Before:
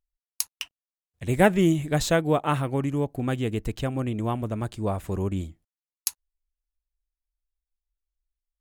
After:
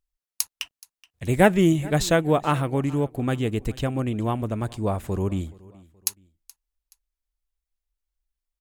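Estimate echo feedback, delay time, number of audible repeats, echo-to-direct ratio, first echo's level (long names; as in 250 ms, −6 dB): 36%, 425 ms, 2, −22.0 dB, −22.5 dB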